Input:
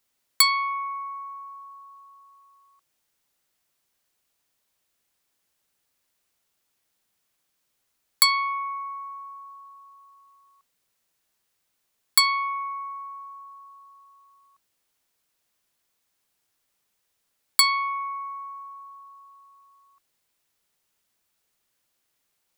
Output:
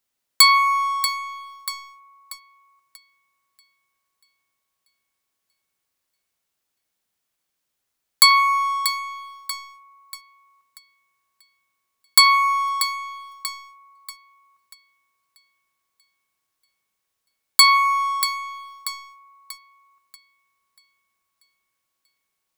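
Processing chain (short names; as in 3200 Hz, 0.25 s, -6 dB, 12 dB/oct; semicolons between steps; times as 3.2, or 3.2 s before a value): split-band echo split 1400 Hz, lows 88 ms, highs 0.637 s, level -13 dB; sample leveller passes 2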